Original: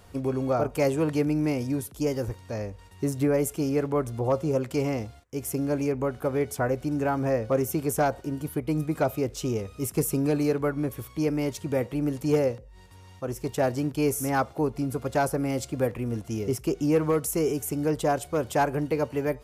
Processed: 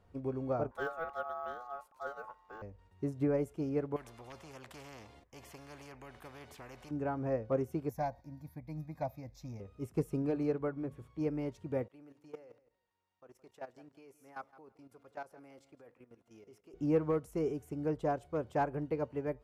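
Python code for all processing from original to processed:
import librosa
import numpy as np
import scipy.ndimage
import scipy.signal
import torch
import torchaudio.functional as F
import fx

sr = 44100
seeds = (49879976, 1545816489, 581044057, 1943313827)

y = fx.chain(x, sr, fx.ring_mod(carrier_hz=980.0),
    fx.resample_bad(factor=2, down='none', up='hold'), at=(0.71, 2.62))
y = fx.chain(y, sr, fx.peak_eq(hz=1400.0, db=-9.5, octaves=0.22),
    fx.spectral_comp(ratio=4.0), at=(3.96, 6.91))
y = fx.chain(y, sr, fx.peak_eq(hz=13000.0, db=12.5, octaves=1.5),
    fx.fixed_phaser(hz=2000.0, stages=8), at=(7.89, 9.6))
y = fx.chain(y, sr, fx.hum_notches(base_hz=50, count=5),
    fx.resample_linear(factor=2), at=(10.22, 11.21))
y = fx.chain(y, sr, fx.highpass(hz=1100.0, slope=6),
    fx.level_steps(step_db=14),
    fx.echo_feedback(ms=166, feedback_pct=16, wet_db=-16.0), at=(11.88, 16.74))
y = fx.lowpass(y, sr, hz=1300.0, slope=6)
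y = fx.upward_expand(y, sr, threshold_db=-33.0, expansion=1.5)
y = F.gain(torch.from_numpy(y), -5.5).numpy()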